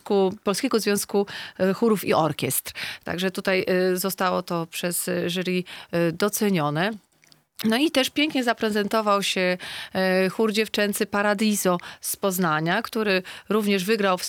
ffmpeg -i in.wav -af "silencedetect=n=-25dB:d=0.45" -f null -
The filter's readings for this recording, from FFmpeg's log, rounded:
silence_start: 6.92
silence_end: 7.59 | silence_duration: 0.68